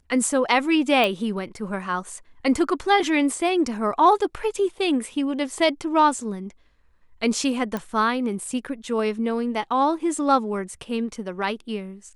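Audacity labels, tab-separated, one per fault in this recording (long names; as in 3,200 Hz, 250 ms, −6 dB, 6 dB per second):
1.040000	1.040000	click
7.770000	7.770000	click −15 dBFS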